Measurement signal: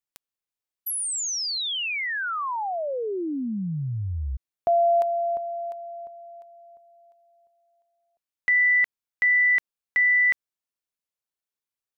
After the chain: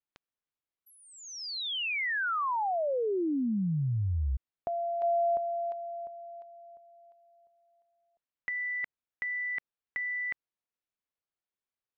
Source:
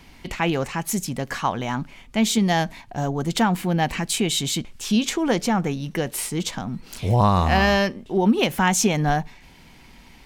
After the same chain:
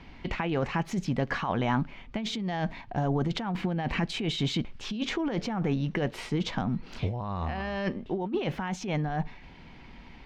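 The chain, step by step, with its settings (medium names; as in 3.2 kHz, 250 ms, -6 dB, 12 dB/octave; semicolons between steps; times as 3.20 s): compressor with a negative ratio -25 dBFS, ratio -1; distance through air 230 m; trim -3 dB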